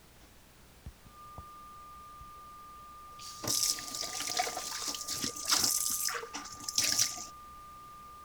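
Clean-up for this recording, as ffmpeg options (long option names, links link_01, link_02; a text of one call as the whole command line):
ffmpeg -i in.wav -af "bandreject=frequency=62.9:width_type=h:width=4,bandreject=frequency=125.8:width_type=h:width=4,bandreject=frequency=188.7:width_type=h:width=4,bandreject=frequency=1200:width=30,afftdn=noise_reduction=24:noise_floor=-56" out.wav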